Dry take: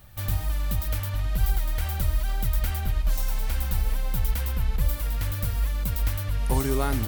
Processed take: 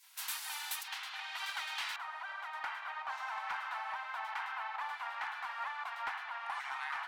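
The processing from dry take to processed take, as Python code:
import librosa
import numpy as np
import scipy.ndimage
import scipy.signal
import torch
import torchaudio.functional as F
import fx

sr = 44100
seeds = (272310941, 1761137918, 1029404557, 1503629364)

y = fx.lowpass(x, sr, hz=fx.steps((0.0, 11000.0), (0.83, 3700.0), (1.96, 1100.0)), slope=12)
y = fx.spec_gate(y, sr, threshold_db=-30, keep='weak')
y = scipy.signal.sosfilt(scipy.signal.ellip(4, 1.0, 50, 810.0, 'highpass', fs=sr, output='sos'), y)
y = fx.rider(y, sr, range_db=10, speed_s=2.0)
y = fx.clip_asym(y, sr, top_db=-39.5, bottom_db=-37.5)
y = F.gain(torch.from_numpy(y), 8.5).numpy()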